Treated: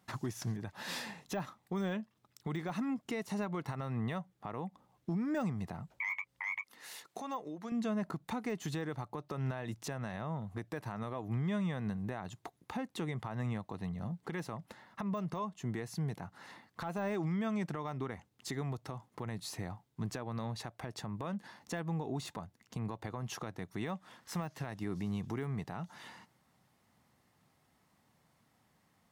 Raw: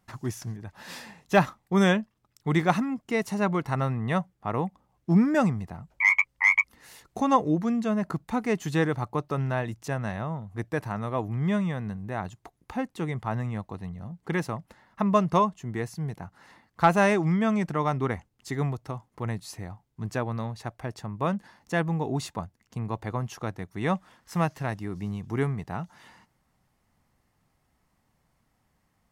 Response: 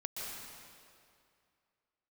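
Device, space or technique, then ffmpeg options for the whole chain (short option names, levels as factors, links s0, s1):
broadcast voice chain: -filter_complex "[0:a]highpass=110,deesser=0.95,acompressor=threshold=0.0282:ratio=5,equalizer=f=3700:t=o:w=0.44:g=3.5,alimiter=level_in=1.78:limit=0.0631:level=0:latency=1:release=140,volume=0.562,asettb=1/sr,asplit=3[s0][s1][s2];[s0]atrim=end=6.614[s3];[s1]atrim=start=6.61:end=7.72,asetpts=PTS-STARTPTS,afade=t=in:d=0.004:c=qsin,afade=t=out:st=1.106:d=0.004:c=qsin,highpass=f=560:p=1[s4];[s2]atrim=start=7.716[s5];[s3][s4]acrossfade=d=0.004:c1=hsin:c2=qsin[s6];[s6][s5]acrossfade=d=0.004:c1=qsin:c2=hsin,volume=1.12"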